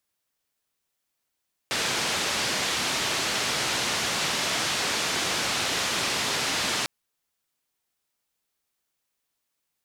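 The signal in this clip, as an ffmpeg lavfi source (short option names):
-f lavfi -i "anoisesrc=c=white:d=5.15:r=44100:seed=1,highpass=f=94,lowpass=f=5300,volume=-16.2dB"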